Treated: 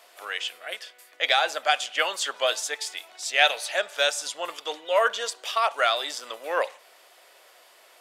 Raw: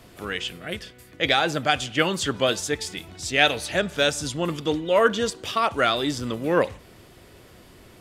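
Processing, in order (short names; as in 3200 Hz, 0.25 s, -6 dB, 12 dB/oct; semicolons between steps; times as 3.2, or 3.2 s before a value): Chebyshev high-pass 620 Hz, order 3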